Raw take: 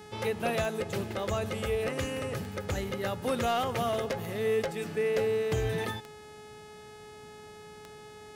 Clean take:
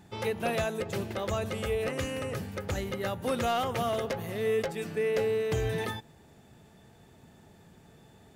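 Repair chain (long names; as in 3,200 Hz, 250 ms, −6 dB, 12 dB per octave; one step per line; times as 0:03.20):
click removal
hum removal 423.5 Hz, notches 27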